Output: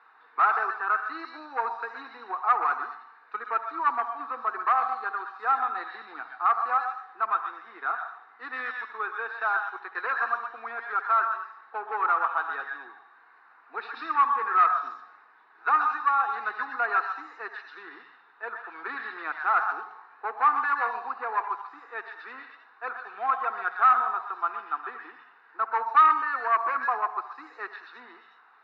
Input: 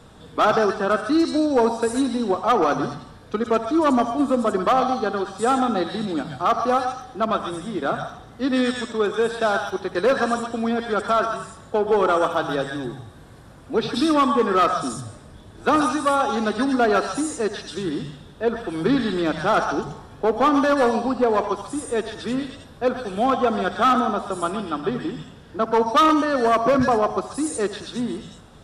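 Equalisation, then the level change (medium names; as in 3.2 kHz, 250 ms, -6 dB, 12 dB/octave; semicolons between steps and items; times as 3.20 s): high-pass 610 Hz 24 dB/octave; elliptic low-pass 3.7 kHz, stop band 60 dB; static phaser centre 1.4 kHz, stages 4; 0.0 dB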